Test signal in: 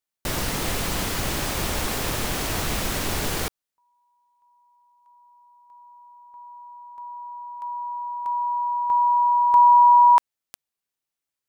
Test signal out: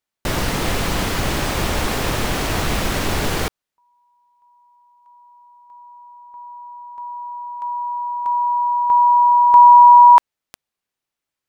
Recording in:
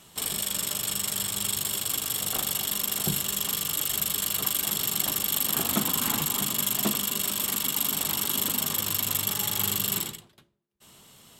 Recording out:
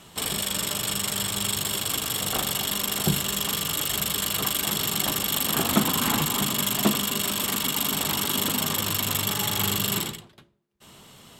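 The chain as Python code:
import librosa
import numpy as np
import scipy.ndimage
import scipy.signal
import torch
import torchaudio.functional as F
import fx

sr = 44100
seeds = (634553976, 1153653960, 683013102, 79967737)

y = fx.high_shelf(x, sr, hz=5500.0, db=-8.5)
y = y * librosa.db_to_amplitude(6.5)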